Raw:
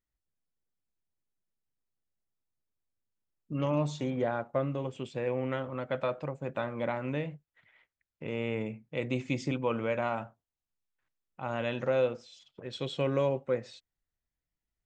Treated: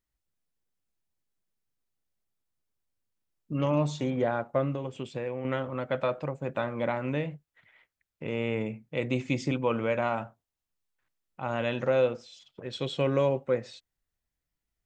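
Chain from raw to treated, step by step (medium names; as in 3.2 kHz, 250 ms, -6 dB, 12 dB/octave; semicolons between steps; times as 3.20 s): 4.74–5.45 s: compression, threshold -33 dBFS, peak gain reduction 6.5 dB; trim +3 dB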